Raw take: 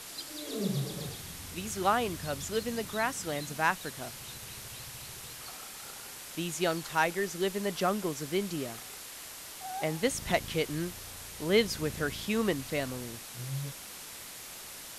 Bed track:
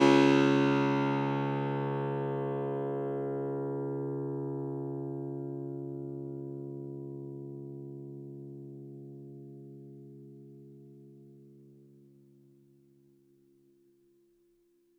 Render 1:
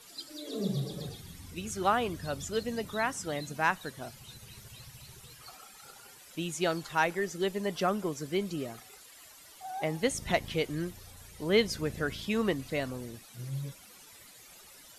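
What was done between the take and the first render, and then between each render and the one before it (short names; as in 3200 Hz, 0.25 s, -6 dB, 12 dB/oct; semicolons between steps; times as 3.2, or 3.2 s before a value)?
denoiser 13 dB, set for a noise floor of -45 dBFS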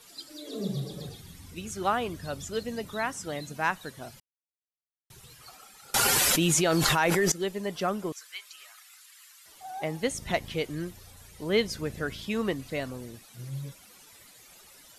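4.2–5.1 mute; 5.94–7.32 fast leveller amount 100%; 8.12–9.46 HPF 1200 Hz 24 dB/oct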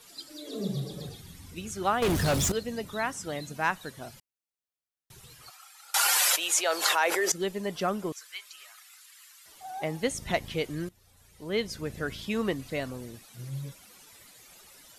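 2.02–2.52 sample leveller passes 5; 5.49–7.31 HPF 950 Hz -> 370 Hz 24 dB/oct; 10.89–12.16 fade in, from -16.5 dB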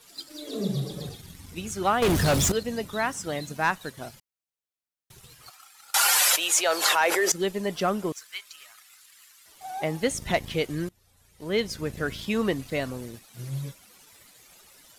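sample leveller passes 1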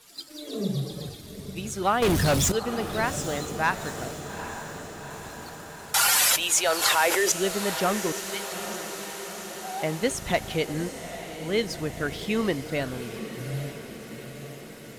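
diffused feedback echo 0.828 s, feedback 65%, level -10.5 dB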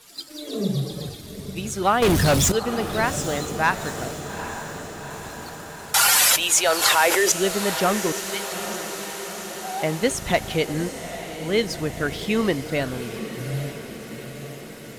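gain +4 dB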